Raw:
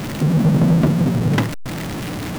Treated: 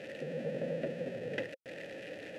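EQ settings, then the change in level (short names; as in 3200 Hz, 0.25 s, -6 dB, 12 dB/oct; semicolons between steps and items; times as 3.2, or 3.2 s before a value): vowel filter e; brick-wall FIR low-pass 13000 Hz; high shelf 5000 Hz +6.5 dB; -4.0 dB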